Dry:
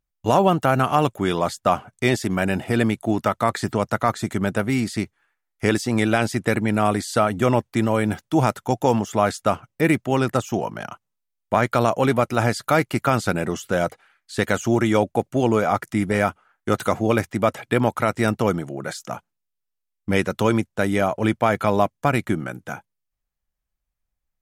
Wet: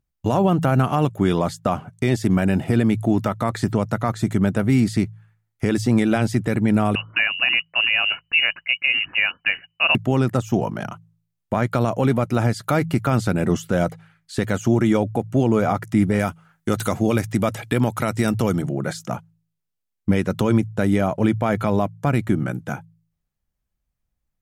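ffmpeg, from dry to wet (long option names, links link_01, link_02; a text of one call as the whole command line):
ffmpeg -i in.wav -filter_complex "[0:a]asettb=1/sr,asplit=3[link_01][link_02][link_03];[link_01]atrim=end=6.954[link_04];[link_02]atrim=start=6.95:end=9.95,asetpts=PTS-STARTPTS,afade=type=in:duration=0.004:curve=qsin,afade=type=out:start_time=2.996:duration=0.004:curve=qsin,lowpass=frequency=2600:width_type=q:width=0.5098,lowpass=frequency=2600:width_type=q:width=0.6013,lowpass=frequency=2600:width_type=q:width=0.9,lowpass=frequency=2600:width_type=q:width=2.563,afreqshift=-3000[link_05];[link_03]atrim=start=9.946[link_06];[link_04][link_05]acrossfade=duration=0.004:curve1=hsin:curve2=qsin[link_07];[link_07][link_06]acrossfade=duration=0.004:curve1=qsin:curve2=hsin,asettb=1/sr,asplit=3[link_08][link_09][link_10];[link_08]atrim=end=16.194[link_11];[link_09]atrim=start=16.19:end=18.62,asetpts=PTS-STARTPTS,afade=type=in:duration=0.004:curve=qsin,afade=type=out:start_time=2.426:duration=0.004:curve=qsin,highshelf=frequency=2900:gain=9.5[link_12];[link_10]atrim=start=18.616[link_13];[link_11][link_12]acrossfade=duration=0.004:curve1=hsin:curve2=qsin[link_14];[link_14][link_13]acrossfade=duration=0.004:curve1=qsin:curve2=hsin,equalizer=frequency=130:width_type=o:width=2.9:gain=9.5,bandreject=frequency=54.44:width_type=h:width=4,bandreject=frequency=108.88:width_type=h:width=4,bandreject=frequency=163.32:width_type=h:width=4,alimiter=limit=-8dB:level=0:latency=1:release=201" out.wav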